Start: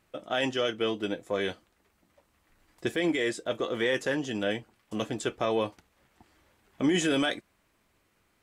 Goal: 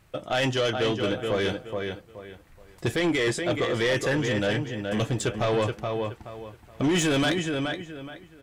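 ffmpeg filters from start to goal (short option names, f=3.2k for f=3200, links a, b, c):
-filter_complex "[0:a]lowshelf=f=170:t=q:w=1.5:g=7,asplit=2[a][b];[b]adelay=424,lowpass=f=3.7k:p=1,volume=-7dB,asplit=2[c][d];[d]adelay=424,lowpass=f=3.7k:p=1,volume=0.26,asplit=2[e][f];[f]adelay=424,lowpass=f=3.7k:p=1,volume=0.26[g];[c][e][g]amix=inputs=3:normalize=0[h];[a][h]amix=inputs=2:normalize=0,asoftclip=type=tanh:threshold=-25.5dB,volume=7dB"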